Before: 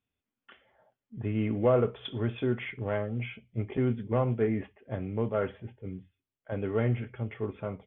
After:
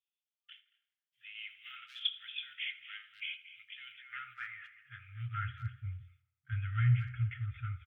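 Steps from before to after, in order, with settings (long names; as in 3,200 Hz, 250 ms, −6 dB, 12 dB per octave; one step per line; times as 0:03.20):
far-end echo of a speakerphone 230 ms, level −13 dB
noise gate −58 dBFS, range −10 dB
high-pass filter sweep 3,100 Hz → 63 Hz, 0:03.86–0:05.76
tape delay 83 ms, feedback 63%, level −14.5 dB, low-pass 2,400 Hz
brick-wall band-stop 130–1,200 Hz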